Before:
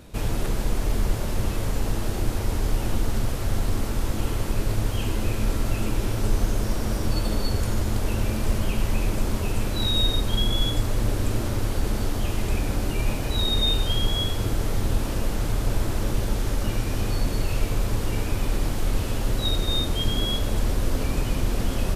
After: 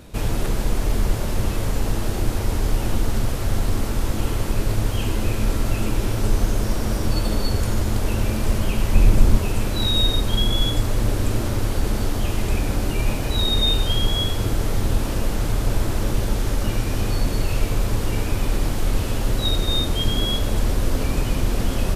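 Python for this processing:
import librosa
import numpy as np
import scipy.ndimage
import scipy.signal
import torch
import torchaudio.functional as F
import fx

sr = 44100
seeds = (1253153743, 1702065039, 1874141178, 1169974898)

y = fx.low_shelf(x, sr, hz=190.0, db=8.5, at=(8.95, 9.39))
y = y * librosa.db_to_amplitude(3.0)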